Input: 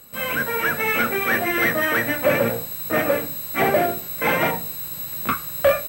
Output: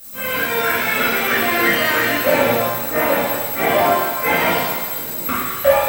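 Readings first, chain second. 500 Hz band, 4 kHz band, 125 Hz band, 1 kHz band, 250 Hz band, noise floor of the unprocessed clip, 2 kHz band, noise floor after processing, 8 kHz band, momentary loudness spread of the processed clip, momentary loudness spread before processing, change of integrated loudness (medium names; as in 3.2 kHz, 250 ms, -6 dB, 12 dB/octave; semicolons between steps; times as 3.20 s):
+3.5 dB, +8.5 dB, +1.0 dB, +6.0 dB, +3.0 dB, -34 dBFS, +3.5 dB, -26 dBFS, +6.0 dB, 6 LU, 7 LU, +4.0 dB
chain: added noise violet -38 dBFS; two-band feedback delay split 450 Hz, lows 705 ms, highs 218 ms, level -13 dB; pitch-shifted reverb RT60 1 s, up +7 st, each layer -8 dB, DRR -8 dB; trim -5.5 dB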